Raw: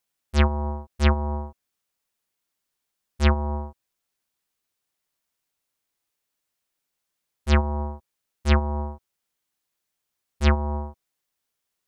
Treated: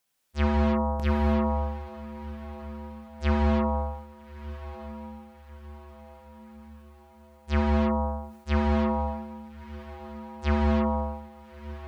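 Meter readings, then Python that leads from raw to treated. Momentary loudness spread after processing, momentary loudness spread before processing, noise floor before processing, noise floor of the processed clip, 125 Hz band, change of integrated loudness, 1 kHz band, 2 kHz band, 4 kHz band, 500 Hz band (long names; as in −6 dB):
19 LU, 14 LU, −82 dBFS, −53 dBFS, −3.0 dB, −2.5 dB, +1.5 dB, −4.0 dB, −7.0 dB, +2.0 dB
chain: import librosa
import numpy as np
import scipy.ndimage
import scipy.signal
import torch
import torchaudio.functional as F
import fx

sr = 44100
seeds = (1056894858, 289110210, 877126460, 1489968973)

p1 = fx.auto_swell(x, sr, attack_ms=293.0)
p2 = p1 + fx.echo_diffused(p1, sr, ms=1282, feedback_pct=51, wet_db=-14.5, dry=0)
p3 = fx.rev_gated(p2, sr, seeds[0], gate_ms=360, shape='flat', drr_db=-2.0)
p4 = fx.sustainer(p3, sr, db_per_s=83.0)
y = p4 * 10.0 ** (3.0 / 20.0)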